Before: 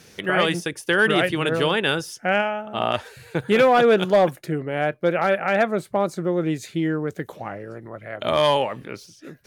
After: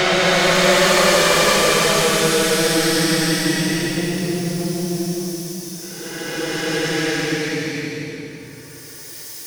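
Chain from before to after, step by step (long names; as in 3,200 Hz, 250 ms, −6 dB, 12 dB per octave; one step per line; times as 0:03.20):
phase distortion by the signal itself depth 0.29 ms
extreme stretch with random phases 22×, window 0.10 s, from 0:00.36
feedback echo with a swinging delay time 167 ms, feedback 67%, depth 53 cents, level −10 dB
level +4.5 dB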